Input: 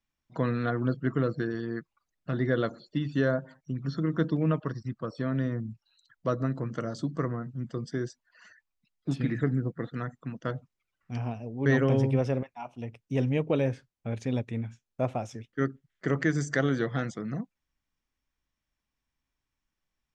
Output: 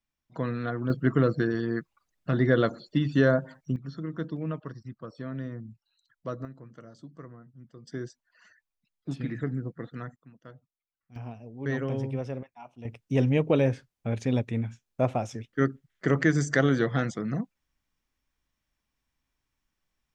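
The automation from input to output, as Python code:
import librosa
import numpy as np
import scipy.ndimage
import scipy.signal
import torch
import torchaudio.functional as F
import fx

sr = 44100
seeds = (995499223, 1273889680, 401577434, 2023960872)

y = fx.gain(x, sr, db=fx.steps((0.0, -2.5), (0.9, 4.5), (3.76, -6.5), (6.45, -15.0), (7.87, -4.0), (10.16, -16.0), (11.16, -6.5), (12.85, 3.5)))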